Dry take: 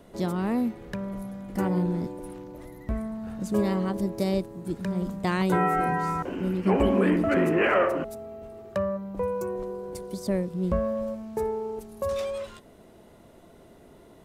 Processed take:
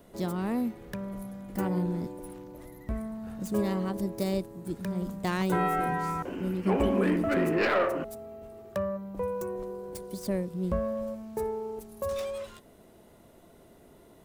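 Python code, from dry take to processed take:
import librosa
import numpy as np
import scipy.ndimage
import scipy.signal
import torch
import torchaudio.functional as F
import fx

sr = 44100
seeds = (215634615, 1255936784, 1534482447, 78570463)

y = fx.tracing_dist(x, sr, depth_ms=0.051)
y = fx.high_shelf(y, sr, hz=11000.0, db=11.0)
y = y * 10.0 ** (-3.5 / 20.0)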